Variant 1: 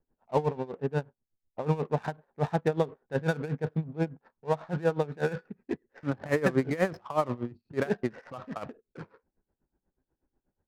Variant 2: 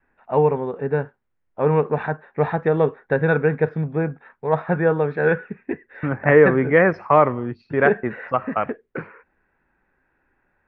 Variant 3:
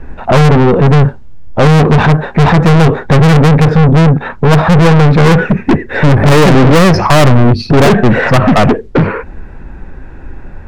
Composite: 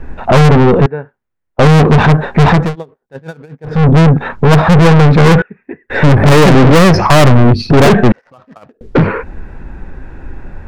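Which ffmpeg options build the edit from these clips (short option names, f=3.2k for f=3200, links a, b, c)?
-filter_complex "[1:a]asplit=2[a][b];[0:a]asplit=2[c][d];[2:a]asplit=5[e][f][g][h][i];[e]atrim=end=0.862[j];[a]atrim=start=0.858:end=1.592[k];[f]atrim=start=1.588:end=2.76[l];[c]atrim=start=2.52:end=3.88[m];[g]atrim=start=3.64:end=5.422[n];[b]atrim=start=5.418:end=5.902[o];[h]atrim=start=5.898:end=8.122[p];[d]atrim=start=8.118:end=8.812[q];[i]atrim=start=8.808[r];[j][k]acrossfade=d=0.004:c1=hsin:c2=hsin[s];[s][l]acrossfade=d=0.004:c1=hsin:c2=hsin[t];[t][m]acrossfade=d=0.24:c1=tri:c2=tri[u];[u][n]acrossfade=d=0.24:c1=tri:c2=tri[v];[v][o]acrossfade=d=0.004:c1=hsin:c2=hsin[w];[w][p]acrossfade=d=0.004:c1=hsin:c2=hsin[x];[x][q]acrossfade=d=0.004:c1=hsin:c2=hsin[y];[y][r]acrossfade=d=0.004:c1=hsin:c2=hsin"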